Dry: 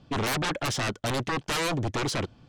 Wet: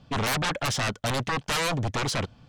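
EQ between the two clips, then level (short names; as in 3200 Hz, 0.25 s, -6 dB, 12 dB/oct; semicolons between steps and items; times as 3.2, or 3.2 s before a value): bell 340 Hz -8 dB 0.55 oct; +2.0 dB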